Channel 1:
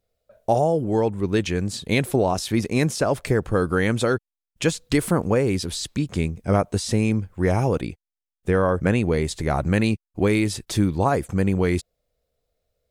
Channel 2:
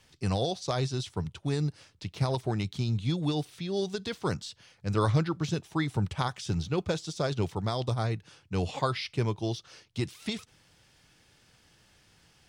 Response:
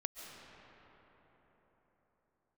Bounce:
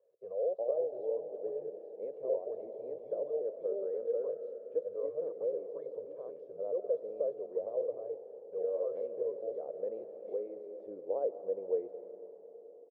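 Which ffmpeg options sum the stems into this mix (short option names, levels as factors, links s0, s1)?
-filter_complex "[0:a]adelay=100,volume=0.355,asplit=2[s0][s1];[s1]volume=0.708[s2];[1:a]alimiter=limit=0.0631:level=0:latency=1:release=28,aecho=1:1:1.8:0.71,volume=1.26,asplit=2[s3][s4];[s4]apad=whole_len=573306[s5];[s0][s5]sidechaincompress=threshold=0.0178:ratio=8:attack=5:release=1020[s6];[2:a]atrim=start_sample=2205[s7];[s2][s7]afir=irnorm=-1:irlink=0[s8];[s6][s3][s8]amix=inputs=3:normalize=0,asuperpass=centerf=510:order=4:qfactor=3.3"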